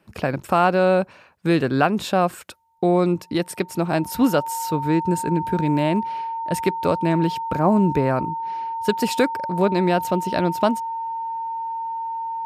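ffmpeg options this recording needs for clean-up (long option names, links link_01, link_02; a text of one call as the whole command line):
ffmpeg -i in.wav -af "bandreject=frequency=910:width=30" out.wav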